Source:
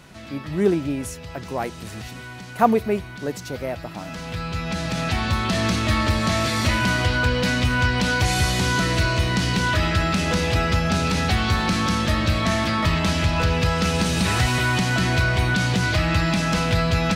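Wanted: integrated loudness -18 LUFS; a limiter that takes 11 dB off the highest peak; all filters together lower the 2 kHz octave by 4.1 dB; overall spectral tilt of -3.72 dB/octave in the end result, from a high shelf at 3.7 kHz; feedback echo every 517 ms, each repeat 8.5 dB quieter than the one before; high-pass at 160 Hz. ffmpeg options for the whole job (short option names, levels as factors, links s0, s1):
-af "highpass=160,equalizer=f=2000:t=o:g=-7.5,highshelf=f=3700:g=5.5,alimiter=limit=0.178:level=0:latency=1,aecho=1:1:517|1034|1551|2068:0.376|0.143|0.0543|0.0206,volume=2"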